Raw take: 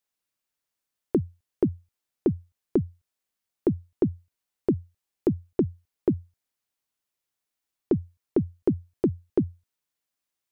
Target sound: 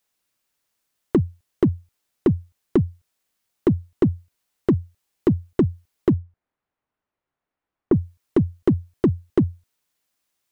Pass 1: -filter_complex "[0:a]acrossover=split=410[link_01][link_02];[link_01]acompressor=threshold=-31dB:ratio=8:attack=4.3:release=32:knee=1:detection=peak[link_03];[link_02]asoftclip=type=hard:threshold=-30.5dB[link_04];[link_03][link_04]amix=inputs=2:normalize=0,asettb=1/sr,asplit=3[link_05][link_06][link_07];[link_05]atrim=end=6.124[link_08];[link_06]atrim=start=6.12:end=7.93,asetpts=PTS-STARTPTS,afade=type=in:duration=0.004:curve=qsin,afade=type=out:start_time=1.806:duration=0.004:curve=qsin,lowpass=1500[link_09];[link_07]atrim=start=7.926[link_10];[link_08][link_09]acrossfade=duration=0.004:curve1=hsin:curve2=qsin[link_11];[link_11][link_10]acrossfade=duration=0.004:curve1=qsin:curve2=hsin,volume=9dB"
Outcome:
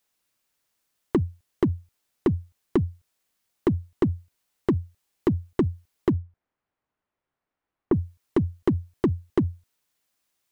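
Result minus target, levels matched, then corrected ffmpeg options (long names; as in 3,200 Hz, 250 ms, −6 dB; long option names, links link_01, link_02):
downward compressor: peak gain reduction +6 dB
-filter_complex "[0:a]acrossover=split=410[link_01][link_02];[link_01]acompressor=threshold=-24dB:ratio=8:attack=4.3:release=32:knee=1:detection=peak[link_03];[link_02]asoftclip=type=hard:threshold=-30.5dB[link_04];[link_03][link_04]amix=inputs=2:normalize=0,asettb=1/sr,asplit=3[link_05][link_06][link_07];[link_05]atrim=end=6.124[link_08];[link_06]atrim=start=6.12:end=7.93,asetpts=PTS-STARTPTS,afade=type=in:duration=0.004:curve=qsin,afade=type=out:start_time=1.806:duration=0.004:curve=qsin,lowpass=1500[link_09];[link_07]atrim=start=7.926[link_10];[link_08][link_09]acrossfade=duration=0.004:curve1=hsin:curve2=qsin[link_11];[link_11][link_10]acrossfade=duration=0.004:curve1=qsin:curve2=hsin,volume=9dB"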